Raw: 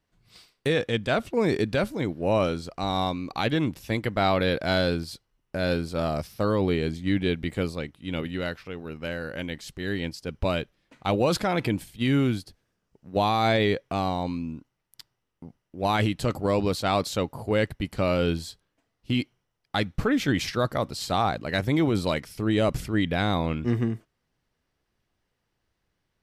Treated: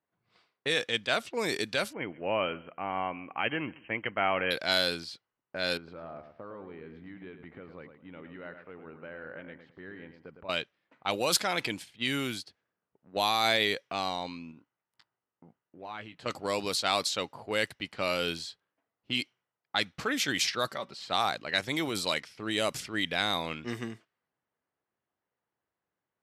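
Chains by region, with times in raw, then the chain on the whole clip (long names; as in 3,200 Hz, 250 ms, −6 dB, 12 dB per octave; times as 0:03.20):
0:01.93–0:04.51: linear-phase brick-wall low-pass 3,200 Hz + repeating echo 136 ms, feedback 24%, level −22 dB
0:05.77–0:10.49: low-pass filter 1,600 Hz + downward compressor 12 to 1, threshold −30 dBFS + repeating echo 108 ms, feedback 27%, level −8.5 dB
0:14.51–0:16.26: downward compressor 3 to 1, threshold −36 dBFS + double-tracking delay 18 ms −9 dB
0:20.67–0:21.07: comb filter 5.2 ms, depth 51% + downward compressor 1.5 to 1, threshold −34 dBFS
whole clip: low-pass that shuts in the quiet parts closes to 1,100 Hz, open at −18.5 dBFS; high-pass filter 77 Hz; spectral tilt +4 dB per octave; level −3.5 dB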